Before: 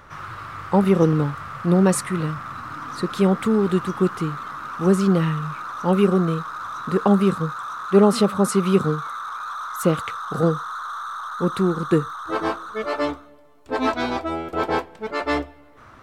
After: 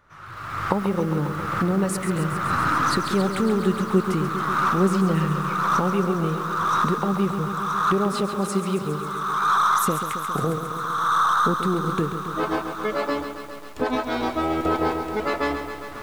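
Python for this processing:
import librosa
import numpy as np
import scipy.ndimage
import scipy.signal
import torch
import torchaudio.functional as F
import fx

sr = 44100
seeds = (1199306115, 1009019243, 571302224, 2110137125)

y = fx.doppler_pass(x, sr, speed_mps=7, closest_m=7.1, pass_at_s=4.17)
y = fx.recorder_agc(y, sr, target_db=-14.0, rise_db_per_s=32.0, max_gain_db=30)
y = fx.echo_crushed(y, sr, ms=136, feedback_pct=80, bits=7, wet_db=-9.0)
y = F.gain(torch.from_numpy(y), -1.5).numpy()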